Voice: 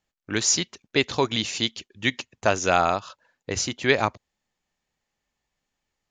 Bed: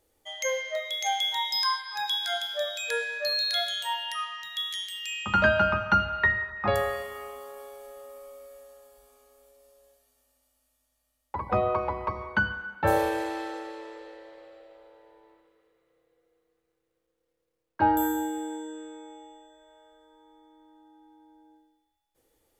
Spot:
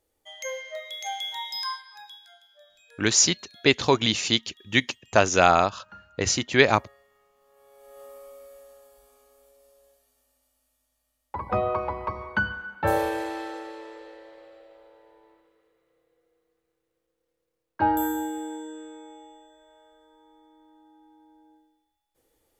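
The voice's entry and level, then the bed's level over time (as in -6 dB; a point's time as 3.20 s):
2.70 s, +2.5 dB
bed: 1.71 s -5 dB
2.37 s -25.5 dB
7.33 s -25.5 dB
8.02 s 0 dB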